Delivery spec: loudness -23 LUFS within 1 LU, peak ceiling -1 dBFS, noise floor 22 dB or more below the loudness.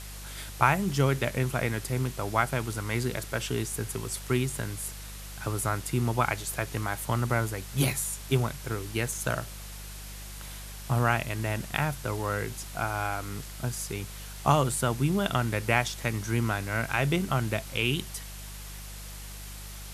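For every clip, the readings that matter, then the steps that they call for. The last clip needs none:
hum 50 Hz; harmonics up to 200 Hz; hum level -40 dBFS; noise floor -41 dBFS; noise floor target -51 dBFS; loudness -29.0 LUFS; peak -6.0 dBFS; loudness target -23.0 LUFS
-> de-hum 50 Hz, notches 4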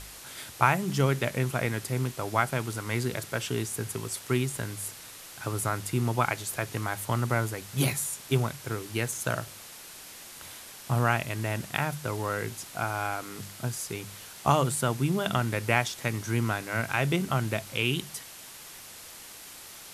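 hum none; noise floor -46 dBFS; noise floor target -52 dBFS
-> denoiser 6 dB, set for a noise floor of -46 dBFS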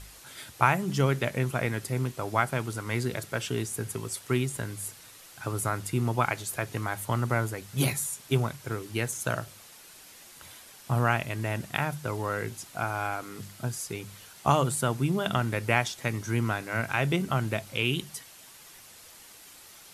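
noise floor -51 dBFS; noise floor target -52 dBFS
-> denoiser 6 dB, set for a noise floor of -51 dBFS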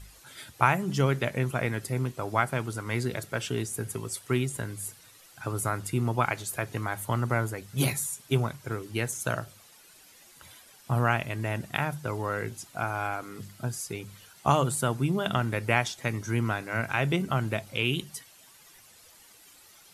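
noise floor -55 dBFS; loudness -29.5 LUFS; peak -6.0 dBFS; loudness target -23.0 LUFS
-> gain +6.5 dB; limiter -1 dBFS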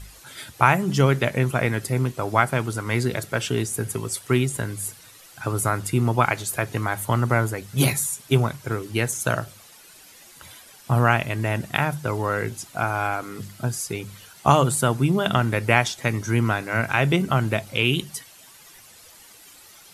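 loudness -23.0 LUFS; peak -1.0 dBFS; noise floor -49 dBFS

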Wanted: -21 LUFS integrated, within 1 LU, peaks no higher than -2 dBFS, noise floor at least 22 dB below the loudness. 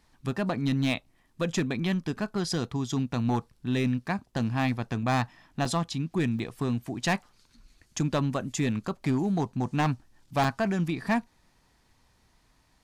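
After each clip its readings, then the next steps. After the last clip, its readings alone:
clipped 1.4%; flat tops at -19.5 dBFS; dropouts 3; longest dropout 2.8 ms; loudness -29.5 LUFS; peak -19.5 dBFS; loudness target -21.0 LUFS
-> clip repair -19.5 dBFS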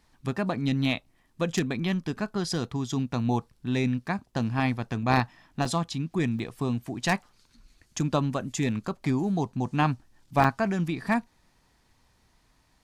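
clipped 0.0%; dropouts 3; longest dropout 2.8 ms
-> interpolate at 5.65/6.39/10.44, 2.8 ms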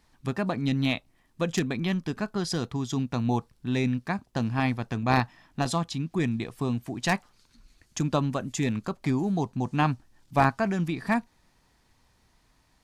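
dropouts 0; loudness -28.5 LUFS; peak -10.5 dBFS; loudness target -21.0 LUFS
-> gain +7.5 dB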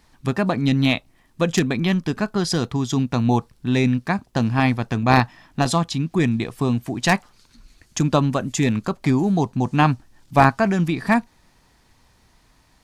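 loudness -21.0 LUFS; peak -3.0 dBFS; noise floor -59 dBFS

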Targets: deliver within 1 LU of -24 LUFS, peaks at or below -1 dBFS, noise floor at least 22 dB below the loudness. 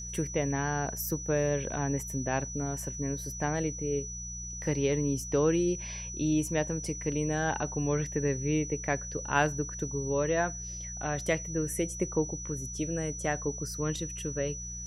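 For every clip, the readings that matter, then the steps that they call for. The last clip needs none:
hum 60 Hz; harmonics up to 180 Hz; hum level -41 dBFS; steady tone 5900 Hz; tone level -39 dBFS; loudness -31.0 LUFS; peak -11.0 dBFS; loudness target -24.0 LUFS
-> de-hum 60 Hz, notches 3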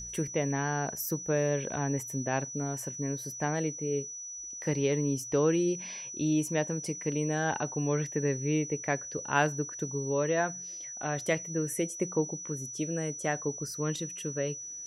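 hum none; steady tone 5900 Hz; tone level -39 dBFS
-> notch 5900 Hz, Q 30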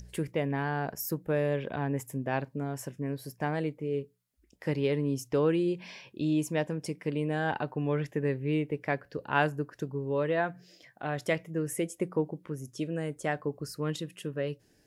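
steady tone none; loudness -32.0 LUFS; peak -11.0 dBFS; loudness target -24.0 LUFS
-> gain +8 dB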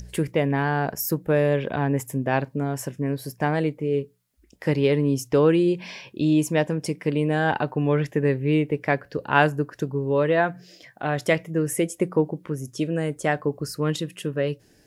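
loudness -24.0 LUFS; peak -3.0 dBFS; noise floor -58 dBFS

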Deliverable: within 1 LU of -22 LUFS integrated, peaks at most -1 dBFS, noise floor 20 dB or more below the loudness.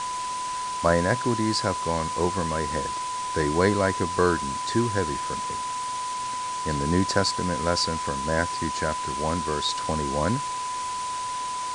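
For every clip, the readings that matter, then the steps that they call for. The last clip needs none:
steady tone 1000 Hz; tone level -28 dBFS; noise floor -30 dBFS; noise floor target -46 dBFS; loudness -26.0 LUFS; peak -6.0 dBFS; loudness target -22.0 LUFS
-> notch 1000 Hz, Q 30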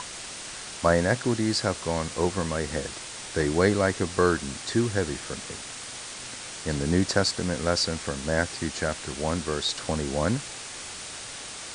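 steady tone none; noise floor -39 dBFS; noise floor target -48 dBFS
-> denoiser 9 dB, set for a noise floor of -39 dBFS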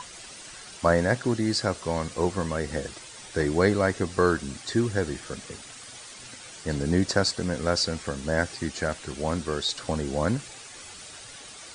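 noise floor -44 dBFS; noise floor target -47 dBFS
-> denoiser 6 dB, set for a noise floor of -44 dBFS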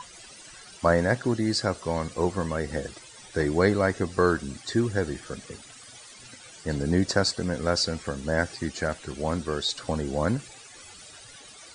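noise floor -48 dBFS; loudness -27.0 LUFS; peak -6.5 dBFS; loudness target -22.0 LUFS
-> gain +5 dB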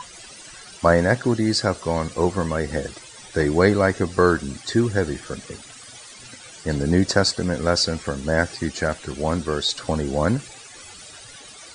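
loudness -22.0 LUFS; peak -1.5 dBFS; noise floor -43 dBFS

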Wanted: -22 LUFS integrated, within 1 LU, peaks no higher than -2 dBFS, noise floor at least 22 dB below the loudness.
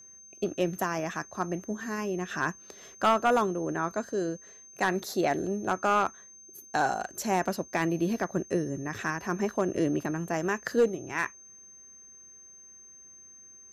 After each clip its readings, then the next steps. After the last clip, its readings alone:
clipped 0.3%; flat tops at -16.5 dBFS; steady tone 6300 Hz; tone level -49 dBFS; loudness -29.5 LUFS; peak -16.5 dBFS; loudness target -22.0 LUFS
-> clip repair -16.5 dBFS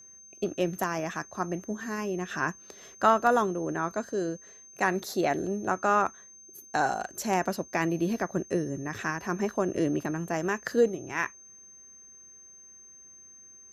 clipped 0.0%; steady tone 6300 Hz; tone level -49 dBFS
-> notch 6300 Hz, Q 30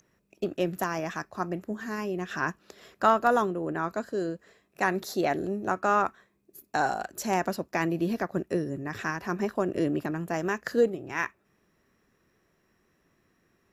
steady tone none; loudness -29.5 LUFS; peak -8.0 dBFS; loudness target -22.0 LUFS
-> gain +7.5 dB; limiter -2 dBFS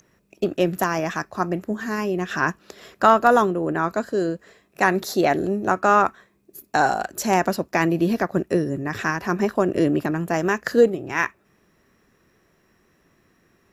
loudness -22.0 LUFS; peak -2.0 dBFS; noise floor -63 dBFS

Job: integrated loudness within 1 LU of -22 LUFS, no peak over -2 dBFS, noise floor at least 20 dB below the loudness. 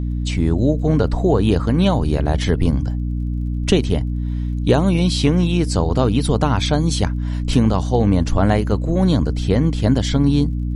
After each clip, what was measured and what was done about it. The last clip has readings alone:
ticks 28/s; hum 60 Hz; harmonics up to 300 Hz; hum level -19 dBFS; loudness -18.5 LUFS; peak -2.5 dBFS; loudness target -22.0 LUFS
-> de-click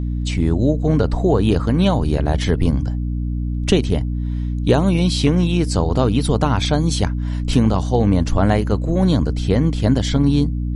ticks 0.093/s; hum 60 Hz; harmonics up to 300 Hz; hum level -19 dBFS
-> notches 60/120/180/240/300 Hz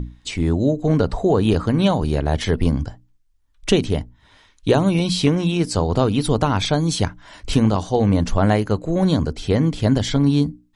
hum none; loudness -19.5 LUFS; peak -3.0 dBFS; loudness target -22.0 LUFS
-> gain -2.5 dB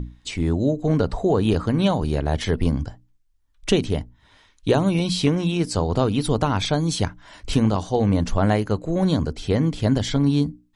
loudness -22.0 LUFS; peak -5.5 dBFS; noise floor -61 dBFS

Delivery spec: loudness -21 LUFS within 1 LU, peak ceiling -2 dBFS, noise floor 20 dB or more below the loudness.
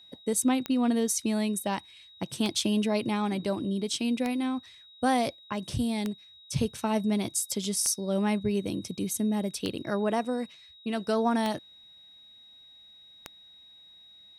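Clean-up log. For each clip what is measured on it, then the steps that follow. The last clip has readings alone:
clicks 8; steady tone 3800 Hz; tone level -51 dBFS; loudness -29.0 LUFS; peak -13.0 dBFS; loudness target -21.0 LUFS
-> de-click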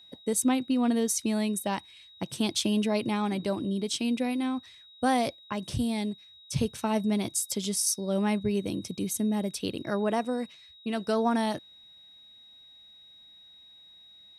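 clicks 0; steady tone 3800 Hz; tone level -51 dBFS
-> notch 3800 Hz, Q 30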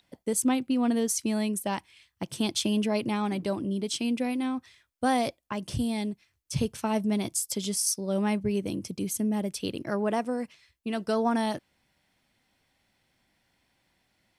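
steady tone none; loudness -29.0 LUFS; peak -14.0 dBFS; loudness target -21.0 LUFS
-> gain +8 dB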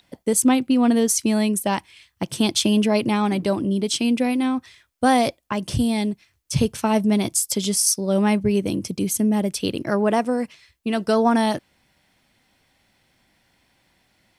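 loudness -21.0 LUFS; peak -6.0 dBFS; noise floor -65 dBFS

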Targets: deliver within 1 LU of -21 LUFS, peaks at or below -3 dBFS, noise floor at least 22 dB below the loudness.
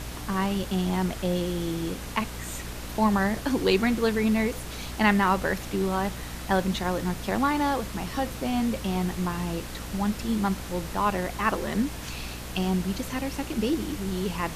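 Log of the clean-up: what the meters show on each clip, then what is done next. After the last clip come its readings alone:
hum 60 Hz; harmonics up to 300 Hz; hum level -38 dBFS; noise floor -37 dBFS; noise floor target -50 dBFS; loudness -27.5 LUFS; peak -7.5 dBFS; loudness target -21.0 LUFS
-> de-hum 60 Hz, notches 5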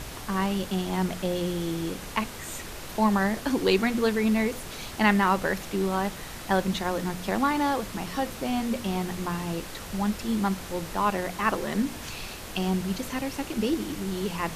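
hum none; noise floor -39 dBFS; noise floor target -50 dBFS
-> noise print and reduce 11 dB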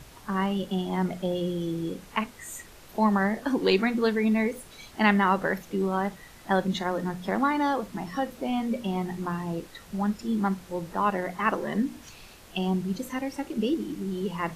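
noise floor -49 dBFS; noise floor target -50 dBFS
-> noise print and reduce 6 dB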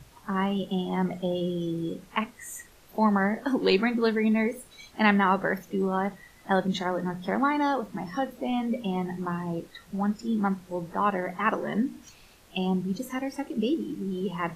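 noise floor -55 dBFS; loudness -28.0 LUFS; peak -8.0 dBFS; loudness target -21.0 LUFS
-> gain +7 dB; limiter -3 dBFS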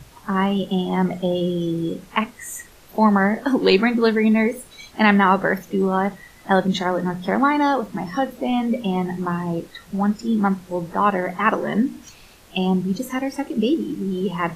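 loudness -21.0 LUFS; peak -3.0 dBFS; noise floor -48 dBFS

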